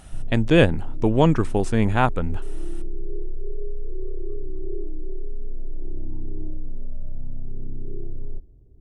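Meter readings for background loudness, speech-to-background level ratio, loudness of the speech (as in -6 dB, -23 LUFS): -37.5 LUFS, 16.5 dB, -21.0 LUFS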